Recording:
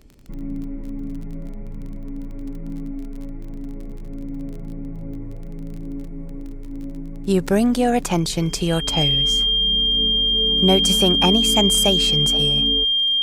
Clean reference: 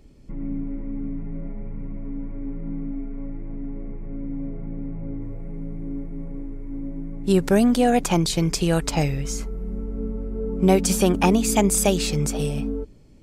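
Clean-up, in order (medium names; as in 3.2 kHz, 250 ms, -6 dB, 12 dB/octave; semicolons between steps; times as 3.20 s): de-click; band-stop 3.2 kHz, Q 30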